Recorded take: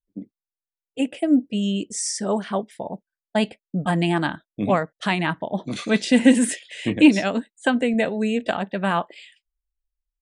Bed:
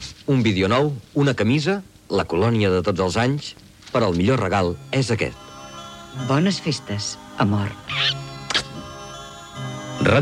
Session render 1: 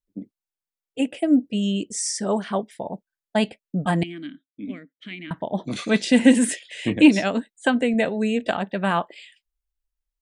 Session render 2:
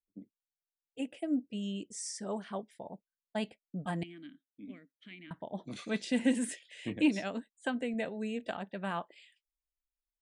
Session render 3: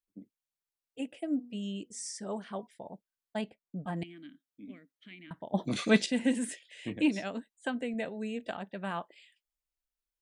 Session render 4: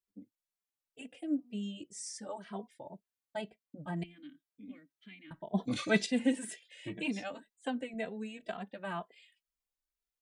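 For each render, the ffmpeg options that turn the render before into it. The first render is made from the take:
-filter_complex "[0:a]asettb=1/sr,asplit=3[s0][s1][s2];[s0]atrim=end=4.034[s3];[s1]atrim=start=4.03:end=5.31,asetpts=PTS-STARTPTS,afade=t=in:d=0.004:c=qsin,afade=t=out:st=1.276:d=0.004:c=qsin,asplit=3[s4][s5][s6];[s4]bandpass=f=270:t=q:w=8,volume=1[s7];[s5]bandpass=f=2290:t=q:w=8,volume=0.501[s8];[s6]bandpass=f=3010:t=q:w=8,volume=0.355[s9];[s7][s8][s9]amix=inputs=3:normalize=0[s10];[s2]atrim=start=5.306[s11];[s3][s10]acrossfade=d=0.004:c1=hsin:c2=qsin[s12];[s12][s11]acrossfade=d=0.004:c1=qsin:c2=hsin"
-af "volume=0.2"
-filter_complex "[0:a]asettb=1/sr,asplit=3[s0][s1][s2];[s0]atrim=end=1.124[s3];[s1]atrim=start=1.12:end=2.67,asetpts=PTS-STARTPTS,afade=t=in:d=0.004:c=qsin,afade=t=out:st=1.546:d=0.004:c=qsin,bandreject=f=242.4:t=h:w=4,bandreject=f=484.8:t=h:w=4,bandreject=f=727.2:t=h:w=4,bandreject=f=969.6:t=h:w=4,bandreject=f=1212:t=h:w=4[s4];[s2]atrim=start=2.666[s5];[s3][s4]acrossfade=d=0.004:c1=hsin:c2=qsin[s6];[s6][s5]acrossfade=d=0.004:c1=qsin:c2=hsin,asettb=1/sr,asplit=3[s7][s8][s9];[s7]atrim=end=3.414[s10];[s8]atrim=start=3.41:end=3.97,asetpts=PTS-STARTPTS,afade=t=in:d=0.004:c=qsin,afade=t=out:st=0.556:d=0.004:c=qsin,highshelf=f=2700:g=-11[s11];[s9]atrim=start=3.966[s12];[s10][s11]acrossfade=d=0.004:c1=hsin:c2=qsin[s13];[s13][s12]acrossfade=d=0.004:c1=qsin:c2=hsin,asplit=3[s14][s15][s16];[s14]atrim=end=5.542[s17];[s15]atrim=start=5.538:end=6.062,asetpts=PTS-STARTPTS,volume=3.35[s18];[s16]atrim=start=6.058[s19];[s17][s18]acrossfade=d=0.004:c1=hsin:c2=hsin[s20];[s20][s19]acrossfade=d=0.004:c1=hsin:c2=hsin"
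-filter_complex "[0:a]asplit=2[s0][s1];[s1]adelay=2.6,afreqshift=2[s2];[s0][s2]amix=inputs=2:normalize=1"

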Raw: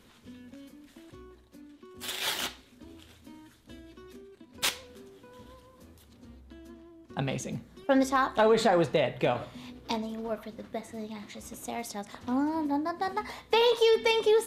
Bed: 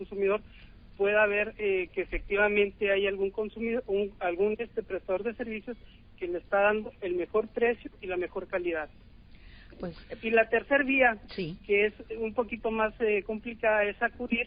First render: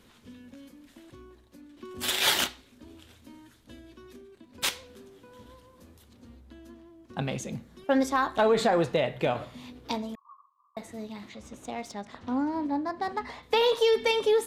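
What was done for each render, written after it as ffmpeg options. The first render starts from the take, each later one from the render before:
-filter_complex "[0:a]asettb=1/sr,asplit=3[s0][s1][s2];[s0]atrim=end=10.154[s3];[s1]atrim=start=10.15:end=10.77,asetpts=PTS-STARTPTS,afade=t=in:d=0.004:c=qsin,afade=t=out:st=0.616:d=0.004:c=qsin,asuperpass=centerf=1100:order=8:qfactor=5[s4];[s2]atrim=start=10.766[s5];[s3][s4]acrossfade=d=0.004:c1=hsin:c2=qsin[s6];[s6][s5]acrossfade=d=0.004:c1=qsin:c2=hsin,asettb=1/sr,asplit=3[s7][s8][s9];[s7]atrim=end=11.294[s10];[s8]atrim=start=11.29:end=13.43,asetpts=PTS-STARTPTS,afade=t=in:d=0.004:c=qsin,afade=t=out:st=2.136:d=0.004:c=qsin,adynamicsmooth=sensitivity=7:basefreq=5300[s11];[s9]atrim=start=13.426[s12];[s10][s11]acrossfade=d=0.004:c1=hsin:c2=qsin[s13];[s13][s12]acrossfade=d=0.004:c1=qsin:c2=hsin,asplit=3[s14][s15][s16];[s14]atrim=end=1.772[s17];[s15]atrim=start=1.768:end=2.442,asetpts=PTS-STARTPTS,volume=2.37[s18];[s16]atrim=start=2.438[s19];[s17][s18]acrossfade=d=0.004:c1=hsin:c2=hsin[s20];[s20][s19]acrossfade=d=0.004:c1=hsin:c2=hsin"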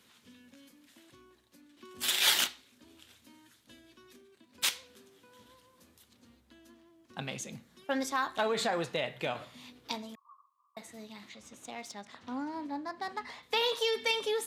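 -af "highpass=160,equalizer=f=370:w=0.33:g=-9.5"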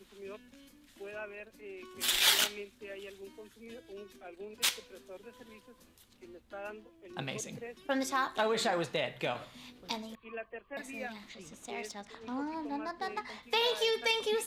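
-filter_complex "[1:a]volume=0.112[s0];[0:a][s0]amix=inputs=2:normalize=0"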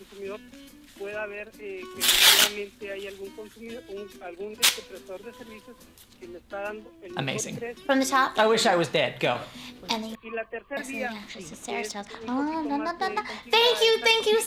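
-af "volume=2.99,alimiter=limit=0.794:level=0:latency=1"

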